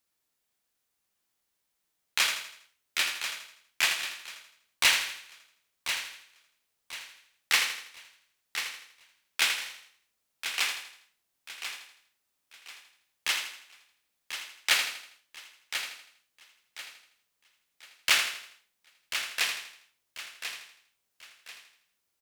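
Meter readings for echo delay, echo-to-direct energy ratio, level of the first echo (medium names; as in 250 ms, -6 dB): 81 ms, -4.5 dB, -8.0 dB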